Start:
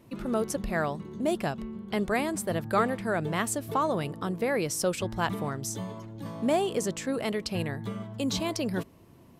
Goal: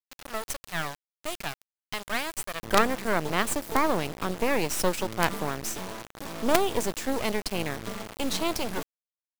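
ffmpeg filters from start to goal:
ffmpeg -i in.wav -af "asetnsamples=nb_out_samples=441:pad=0,asendcmd='2.63 highpass f 240',highpass=990,acrusher=bits=4:dc=4:mix=0:aa=0.000001,volume=6dB" out.wav

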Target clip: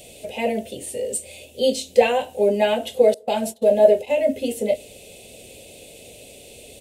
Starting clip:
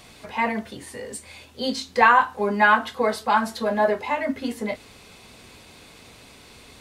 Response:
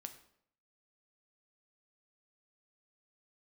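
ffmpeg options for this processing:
-filter_complex "[0:a]asettb=1/sr,asplit=3[link_01][link_02][link_03];[link_01]atrim=end=3.144[link_04];[link_02]atrim=start=3.14:end=4.23,asetpts=PTS-STARTPTS,afade=type=in:duration=0.004:curve=qsin,afade=type=out:start_time=1.086:duration=0.004:curve=qsin,agate=range=-30dB:threshold=-29dB:ratio=16:detection=peak[link_05];[link_03]atrim=start=4.226[link_06];[link_04][link_05]acrossfade=duration=0.004:curve1=hsin:curve2=qsin[link_07];[link_07][link_06]acrossfade=duration=0.004:curve1=qsin:curve2=hsin,firequalizer=gain_entry='entry(260,0);entry(570,13);entry(1100,-24);entry(2700,7);entry(4600,-1);entry(7900,11)':delay=0.05:min_phase=1,asplit=2[link_08][link_09];[1:a]atrim=start_sample=2205,lowpass=1100[link_10];[link_09][link_10]afir=irnorm=-1:irlink=0,volume=-10.5dB[link_11];[link_08][link_11]amix=inputs=2:normalize=0,volume=-1dB"

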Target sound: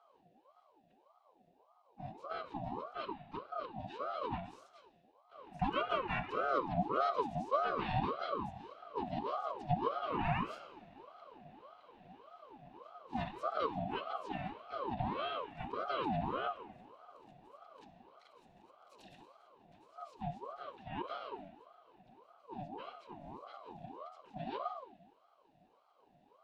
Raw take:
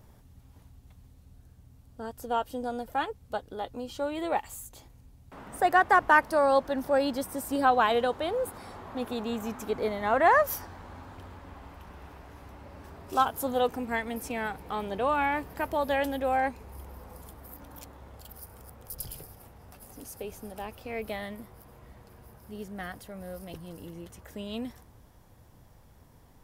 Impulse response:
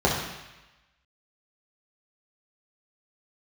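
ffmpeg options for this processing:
-filter_complex "[0:a]lowpass=7500,asplit=4[link_01][link_02][link_03][link_04];[link_02]asetrate=29433,aresample=44100,atempo=1.49831,volume=-1dB[link_05];[link_03]asetrate=33038,aresample=44100,atempo=1.33484,volume=-2dB[link_06];[link_04]asetrate=55563,aresample=44100,atempo=0.793701,volume=-7dB[link_07];[link_01][link_05][link_06][link_07]amix=inputs=4:normalize=0,asplit=3[link_08][link_09][link_10];[link_08]bandpass=frequency=270:width_type=q:width=8,volume=0dB[link_11];[link_09]bandpass=frequency=2290:width_type=q:width=8,volume=-6dB[link_12];[link_10]bandpass=frequency=3010:width_type=q:width=8,volume=-9dB[link_13];[link_11][link_12][link_13]amix=inputs=3:normalize=0,asplit=2[link_14][link_15];[1:a]atrim=start_sample=2205[link_16];[link_15][link_16]afir=irnorm=-1:irlink=0,volume=-21dB[link_17];[link_14][link_17]amix=inputs=2:normalize=0,aeval=exprs='val(0)*sin(2*PI*710*n/s+710*0.4/1.7*sin(2*PI*1.7*n/s))':channel_layout=same,volume=1dB"

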